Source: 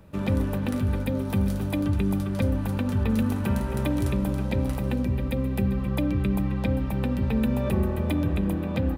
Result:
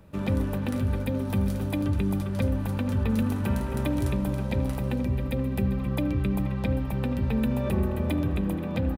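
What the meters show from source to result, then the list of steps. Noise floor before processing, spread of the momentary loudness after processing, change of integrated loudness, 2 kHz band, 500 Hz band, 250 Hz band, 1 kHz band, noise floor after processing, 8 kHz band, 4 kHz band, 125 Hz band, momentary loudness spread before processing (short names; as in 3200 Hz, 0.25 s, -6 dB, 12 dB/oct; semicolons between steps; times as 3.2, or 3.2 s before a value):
-29 dBFS, 2 LU, -1.5 dB, -1.5 dB, -1.5 dB, -1.5 dB, -1.5 dB, -31 dBFS, -1.5 dB, -1.5 dB, -1.0 dB, 2 LU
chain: outdoor echo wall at 82 m, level -13 dB; gain -1.5 dB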